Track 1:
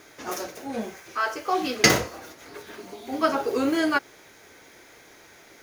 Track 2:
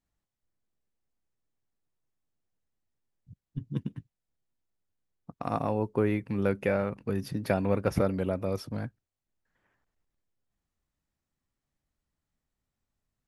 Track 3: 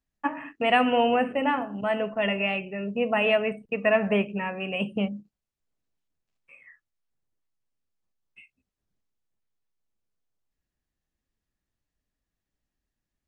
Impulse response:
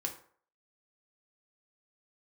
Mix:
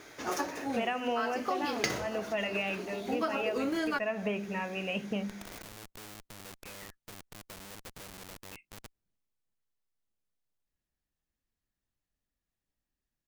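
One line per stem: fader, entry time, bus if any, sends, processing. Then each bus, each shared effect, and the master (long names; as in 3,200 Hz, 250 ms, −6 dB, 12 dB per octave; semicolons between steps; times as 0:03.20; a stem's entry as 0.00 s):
−0.5 dB, 0.00 s, no send, running median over 3 samples
−0.5 dB, 0.00 s, no send, comparator with hysteresis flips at −30.5 dBFS; every bin compressed towards the loudest bin 2 to 1
−4.0 dB, 0.15 s, no send, hum removal 49.98 Hz, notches 8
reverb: not used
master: downward compressor 10 to 1, threshold −28 dBFS, peak gain reduction 16 dB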